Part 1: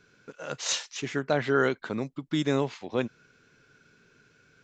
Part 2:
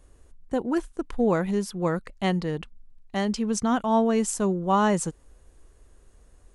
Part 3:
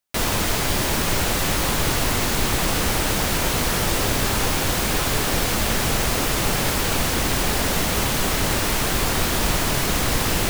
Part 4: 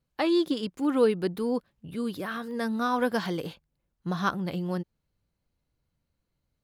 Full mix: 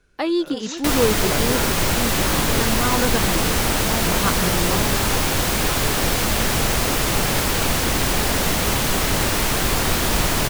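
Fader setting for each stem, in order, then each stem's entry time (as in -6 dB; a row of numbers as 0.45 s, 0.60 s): -5.0 dB, -9.5 dB, +1.5 dB, +3.0 dB; 0.00 s, 0.00 s, 0.70 s, 0.00 s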